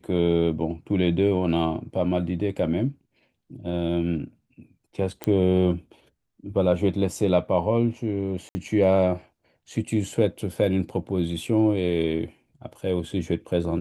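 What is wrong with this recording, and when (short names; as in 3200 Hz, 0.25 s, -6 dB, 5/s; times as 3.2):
5.24 pop -13 dBFS
8.49–8.55 gap 60 ms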